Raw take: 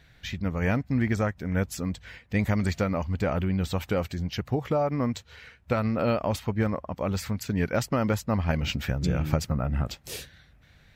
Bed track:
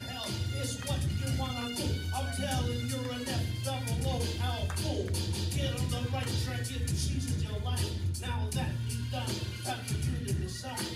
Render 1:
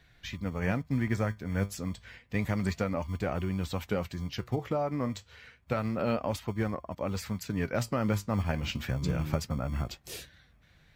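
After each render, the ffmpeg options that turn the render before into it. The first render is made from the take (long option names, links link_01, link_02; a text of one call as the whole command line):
ffmpeg -i in.wav -filter_complex "[0:a]flanger=delay=2.7:depth=7.3:regen=73:speed=0.3:shape=sinusoidal,acrossover=split=100[link_01][link_02];[link_01]acrusher=samples=40:mix=1:aa=0.000001[link_03];[link_03][link_02]amix=inputs=2:normalize=0" out.wav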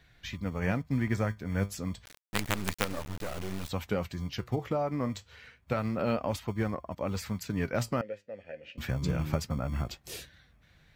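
ffmpeg -i in.wav -filter_complex "[0:a]asettb=1/sr,asplit=3[link_01][link_02][link_03];[link_01]atrim=end=2.054[link_04];[link_02]atrim=start=2.05:end=3.69,asetpts=PTS-STARTPTS,afade=type=in:duration=0.004:curve=qsin,afade=type=out:start_time=1.636:duration=0.004:curve=qsin,acrusher=bits=4:dc=4:mix=0:aa=0.000001[link_05];[link_03]atrim=start=3.686[link_06];[link_04][link_05]acrossfade=duration=0.004:curve1=hsin:curve2=qsin[link_07];[link_07][link_06]acrossfade=duration=0.004:curve1=qsin:curve2=hsin,asettb=1/sr,asplit=3[link_08][link_09][link_10];[link_08]atrim=end=8.014[link_11];[link_09]atrim=start=8.01:end=8.78,asetpts=PTS-STARTPTS,afade=type=in:duration=0.004:curve=qsin,afade=type=out:start_time=0.766:duration=0.004:curve=qsin,asplit=3[link_12][link_13][link_14];[link_12]bandpass=frequency=530:width_type=q:width=8,volume=0dB[link_15];[link_13]bandpass=frequency=1840:width_type=q:width=8,volume=-6dB[link_16];[link_14]bandpass=frequency=2480:width_type=q:width=8,volume=-9dB[link_17];[link_15][link_16][link_17]amix=inputs=3:normalize=0[link_18];[link_10]atrim=start=8.776[link_19];[link_11][link_18]acrossfade=duration=0.004:curve1=hsin:curve2=qsin[link_20];[link_20][link_19]acrossfade=duration=0.004:curve1=qsin:curve2=hsin" out.wav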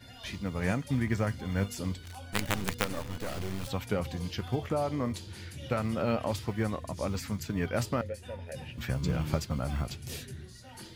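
ffmpeg -i in.wav -i bed.wav -filter_complex "[1:a]volume=-11.5dB[link_01];[0:a][link_01]amix=inputs=2:normalize=0" out.wav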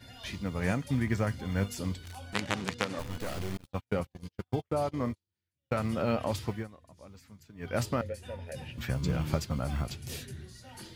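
ffmpeg -i in.wav -filter_complex "[0:a]asettb=1/sr,asplit=3[link_01][link_02][link_03];[link_01]atrim=end=2.334[link_04];[link_02]atrim=start=2.33:end=2.99,asetpts=PTS-STARTPTS,afade=type=in:duration=0.004:curve=qsin,afade=type=out:start_time=0.656:duration=0.004:curve=qsin,highpass=120,lowpass=6700[link_05];[link_03]atrim=start=2.986[link_06];[link_04][link_05]acrossfade=duration=0.004:curve1=hsin:curve2=qsin[link_07];[link_07][link_06]acrossfade=duration=0.004:curve1=qsin:curve2=hsin,asettb=1/sr,asplit=3[link_08][link_09][link_10];[link_08]atrim=end=3.574[link_11];[link_09]atrim=start=3.57:end=5.78,asetpts=PTS-STARTPTS,afade=type=in:duration=0.004:curve=qsin,afade=type=out:start_time=2.206:duration=0.004:curve=qsin,agate=range=-47dB:threshold=-33dB:ratio=16:release=100:detection=peak[link_12];[link_10]atrim=start=5.776[link_13];[link_11][link_12]acrossfade=duration=0.004:curve1=hsin:curve2=qsin[link_14];[link_14][link_13]acrossfade=duration=0.004:curve1=qsin:curve2=hsin,asplit=3[link_15][link_16][link_17];[link_15]atrim=end=6.68,asetpts=PTS-STARTPTS,afade=type=out:start_time=6.5:duration=0.18:silence=0.11885[link_18];[link_16]atrim=start=6.68:end=7.58,asetpts=PTS-STARTPTS,volume=-18.5dB[link_19];[link_17]atrim=start=7.58,asetpts=PTS-STARTPTS,afade=type=in:duration=0.18:silence=0.11885[link_20];[link_18][link_19][link_20]concat=n=3:v=0:a=1" out.wav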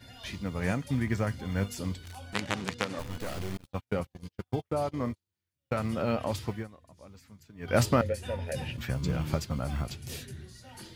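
ffmpeg -i in.wav -filter_complex "[0:a]asettb=1/sr,asplit=3[link_01][link_02][link_03];[link_01]atrim=end=7.684[link_04];[link_02]atrim=start=7.68:end=8.77,asetpts=PTS-STARTPTS,afade=type=in:duration=0.004:curve=qsin,afade=type=out:start_time=1.086:duration=0.004:curve=qsin,acontrast=71[link_05];[link_03]atrim=start=8.766[link_06];[link_04][link_05]acrossfade=duration=0.004:curve1=hsin:curve2=qsin[link_07];[link_07][link_06]acrossfade=duration=0.004:curve1=qsin:curve2=hsin" out.wav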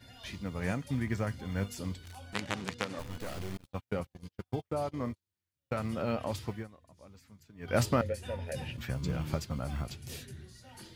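ffmpeg -i in.wav -af "volume=-3.5dB" out.wav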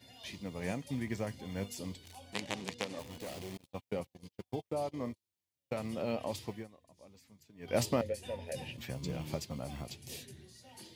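ffmpeg -i in.wav -af "highpass=frequency=240:poles=1,equalizer=frequency=1400:width=2.3:gain=-12" out.wav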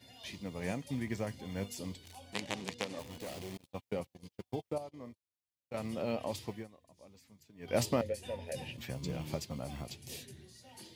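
ffmpeg -i in.wav -filter_complex "[0:a]asplit=3[link_01][link_02][link_03];[link_01]atrim=end=4.782[link_04];[link_02]atrim=start=4.778:end=5.742,asetpts=PTS-STARTPTS,volume=-9.5dB[link_05];[link_03]atrim=start=5.738[link_06];[link_04][link_05]acrossfade=duration=0.004:curve1=hsin:curve2=hsin[link_07];[link_07][link_06]acrossfade=duration=0.004:curve1=hsin:curve2=hsin" out.wav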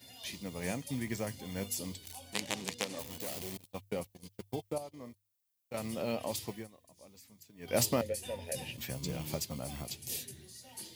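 ffmpeg -i in.wav -af "aemphasis=mode=production:type=50kf,bandreject=frequency=50:width_type=h:width=6,bandreject=frequency=100:width_type=h:width=6" out.wav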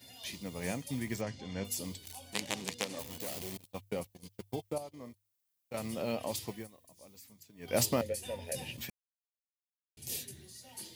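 ffmpeg -i in.wav -filter_complex "[0:a]asettb=1/sr,asplit=3[link_01][link_02][link_03];[link_01]atrim=end=1.214[link_04];[link_02]atrim=start=1.21:end=1.65,asetpts=PTS-STARTPTS,afade=type=in:duration=0.004:curve=qsin,afade=type=out:start_time=0.436:duration=0.004:curve=qsin,lowpass=frequency=6300:width=0.5412,lowpass=frequency=6300:width=1.3066[link_05];[link_03]atrim=start=1.646[link_06];[link_04][link_05]acrossfade=duration=0.004:curve1=hsin:curve2=qsin[link_07];[link_07][link_06]acrossfade=duration=0.004:curve1=qsin:curve2=hsin,asettb=1/sr,asplit=3[link_08][link_09][link_10];[link_08]atrim=end=6.604[link_11];[link_09]atrim=start=6.6:end=7.33,asetpts=PTS-STARTPTS,afade=type=in:duration=0.004:curve=qsin,afade=type=out:start_time=0.726:duration=0.004:curve=qsin,highshelf=frequency=11000:gain=8[link_12];[link_10]atrim=start=7.326[link_13];[link_11][link_12]acrossfade=duration=0.004:curve1=hsin:curve2=qsin[link_14];[link_14][link_13]acrossfade=duration=0.004:curve1=qsin:curve2=hsin,asplit=3[link_15][link_16][link_17];[link_15]atrim=end=8.9,asetpts=PTS-STARTPTS,afade=type=out:start_time=8.896:duration=0.004:curve=hsin[link_18];[link_16]atrim=start=8.9:end=9.97,asetpts=PTS-STARTPTS,volume=0[link_19];[link_17]atrim=start=9.97,asetpts=PTS-STARTPTS,afade=type=in:duration=0.004:curve=hsin[link_20];[link_18][link_19][link_20]concat=n=3:v=0:a=1" out.wav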